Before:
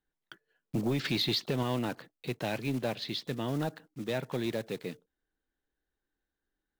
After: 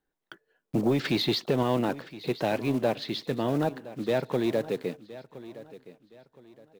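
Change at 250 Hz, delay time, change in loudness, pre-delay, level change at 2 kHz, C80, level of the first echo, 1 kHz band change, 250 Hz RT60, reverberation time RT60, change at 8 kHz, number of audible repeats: +5.5 dB, 1,017 ms, +5.0 dB, no reverb audible, +3.0 dB, no reverb audible, −17.0 dB, +6.5 dB, no reverb audible, no reverb audible, +0.5 dB, 2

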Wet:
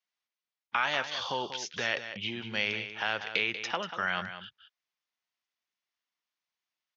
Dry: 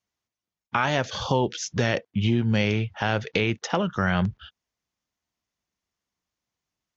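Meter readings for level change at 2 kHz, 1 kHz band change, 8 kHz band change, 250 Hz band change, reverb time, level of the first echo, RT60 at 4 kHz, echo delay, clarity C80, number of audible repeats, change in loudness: −2.0 dB, −6.0 dB, can't be measured, −17.5 dB, no reverb audible, −10.5 dB, no reverb audible, 189 ms, no reverb audible, 1, −6.5 dB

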